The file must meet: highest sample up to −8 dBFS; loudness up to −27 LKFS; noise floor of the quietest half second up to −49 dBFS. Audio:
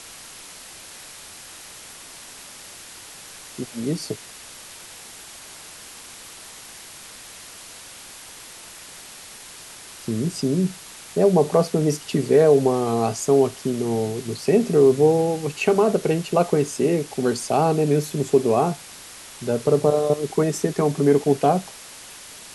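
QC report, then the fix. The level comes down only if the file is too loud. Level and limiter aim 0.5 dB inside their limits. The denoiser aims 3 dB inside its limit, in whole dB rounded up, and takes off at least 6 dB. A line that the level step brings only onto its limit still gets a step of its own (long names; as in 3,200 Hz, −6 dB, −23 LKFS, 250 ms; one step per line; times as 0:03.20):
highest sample −5.0 dBFS: out of spec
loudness −21.0 LKFS: out of spec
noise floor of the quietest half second −42 dBFS: out of spec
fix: broadband denoise 6 dB, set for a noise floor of −42 dBFS
level −6.5 dB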